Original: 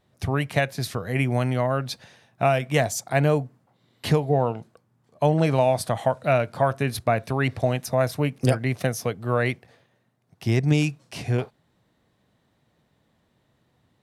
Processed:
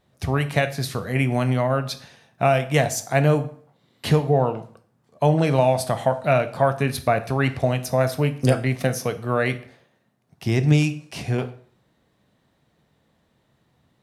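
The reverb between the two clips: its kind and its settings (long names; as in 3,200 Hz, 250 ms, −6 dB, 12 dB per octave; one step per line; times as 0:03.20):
dense smooth reverb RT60 0.51 s, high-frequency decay 0.85×, pre-delay 0 ms, DRR 9 dB
level +1.5 dB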